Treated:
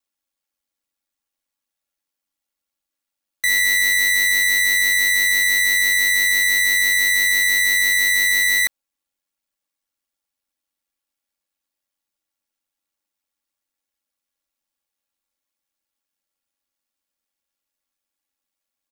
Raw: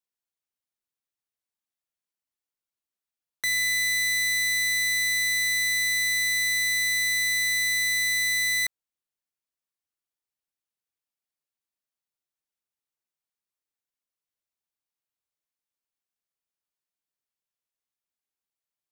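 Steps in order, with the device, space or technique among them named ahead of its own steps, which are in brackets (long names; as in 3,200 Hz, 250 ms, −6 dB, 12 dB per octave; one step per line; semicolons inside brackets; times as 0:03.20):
ring-modulated robot voice (ring modulation 47 Hz; comb filter 3.6 ms, depth 98%)
level +7.5 dB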